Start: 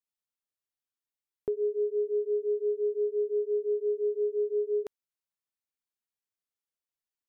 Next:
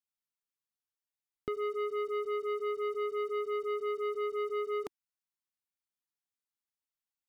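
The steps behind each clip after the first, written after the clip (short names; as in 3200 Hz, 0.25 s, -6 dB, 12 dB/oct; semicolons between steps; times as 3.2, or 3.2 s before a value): sample leveller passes 2; band shelf 510 Hz -8 dB 1 oct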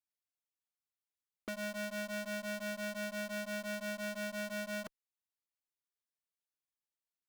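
cycle switcher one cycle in 2, inverted; added harmonics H 2 -11 dB, 4 -17 dB, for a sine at -25.5 dBFS; gain -6 dB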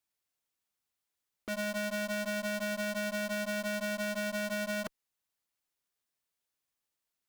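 limiter -35.5 dBFS, peak gain reduction 6.5 dB; gain +7.5 dB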